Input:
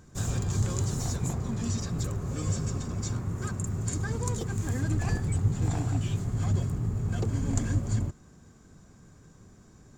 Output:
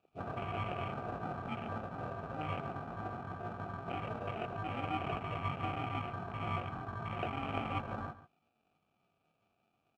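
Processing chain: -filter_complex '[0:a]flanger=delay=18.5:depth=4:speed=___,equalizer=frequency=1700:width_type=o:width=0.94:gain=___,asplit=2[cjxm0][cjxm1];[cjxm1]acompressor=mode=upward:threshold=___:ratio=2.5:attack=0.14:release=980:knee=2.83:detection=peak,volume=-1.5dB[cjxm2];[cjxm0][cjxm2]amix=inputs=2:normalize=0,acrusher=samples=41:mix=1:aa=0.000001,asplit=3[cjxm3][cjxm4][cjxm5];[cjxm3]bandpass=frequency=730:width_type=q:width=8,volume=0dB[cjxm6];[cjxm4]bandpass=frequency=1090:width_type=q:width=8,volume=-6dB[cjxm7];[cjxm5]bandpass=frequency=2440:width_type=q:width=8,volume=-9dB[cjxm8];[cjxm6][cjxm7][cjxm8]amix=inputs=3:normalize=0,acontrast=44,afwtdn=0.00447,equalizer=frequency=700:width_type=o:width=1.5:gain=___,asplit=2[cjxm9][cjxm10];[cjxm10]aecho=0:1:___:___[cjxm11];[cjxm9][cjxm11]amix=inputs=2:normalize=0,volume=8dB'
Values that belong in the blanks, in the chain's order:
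1.7, -4, -47dB, -10, 141, 0.178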